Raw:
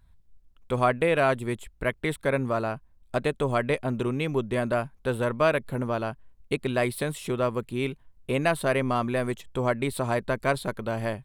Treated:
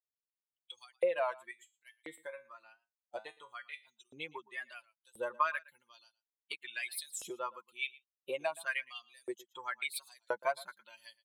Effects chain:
spectral dynamics exaggerated over time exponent 2
notch filter 5,600 Hz, Q 12
comb filter 5.7 ms, depth 66%
downward compressor 6 to 1, threshold −32 dBFS, peak gain reduction 13.5 dB
0:01.51–0:03.87: tuned comb filter 110 Hz, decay 0.29 s, harmonics all, mix 70%
auto-filter high-pass saw up 0.97 Hz 510–7,200 Hz
single-tap delay 115 ms −21.5 dB
wow of a warped record 33 1/3 rpm, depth 100 cents

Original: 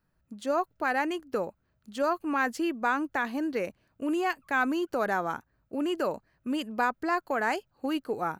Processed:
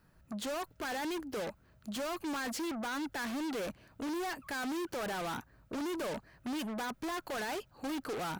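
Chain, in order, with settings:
brickwall limiter −23.5 dBFS, peak gain reduction 9 dB
gain into a clipping stage and back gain 34 dB
harmonic generator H 5 −8 dB, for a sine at −33.5 dBFS

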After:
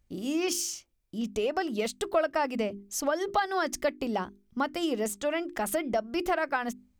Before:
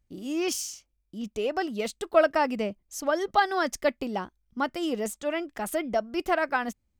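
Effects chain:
mains-hum notches 50/100/150/200/250/300/350/400 Hz
downward compressor 2.5 to 1, threshold −32 dBFS, peak gain reduction 11.5 dB
level +4.5 dB

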